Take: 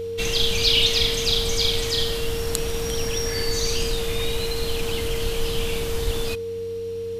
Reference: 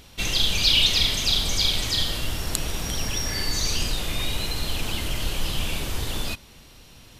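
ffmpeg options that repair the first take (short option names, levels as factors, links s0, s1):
-filter_complex "[0:a]bandreject=f=93.6:t=h:w=4,bandreject=f=187.2:t=h:w=4,bandreject=f=280.8:t=h:w=4,bandreject=f=374.4:t=h:w=4,bandreject=f=468:t=h:w=4,bandreject=f=460:w=30,asplit=3[s0][s1][s2];[s0]afade=t=out:st=6.04:d=0.02[s3];[s1]highpass=f=140:w=0.5412,highpass=f=140:w=1.3066,afade=t=in:st=6.04:d=0.02,afade=t=out:st=6.16:d=0.02[s4];[s2]afade=t=in:st=6.16:d=0.02[s5];[s3][s4][s5]amix=inputs=3:normalize=0"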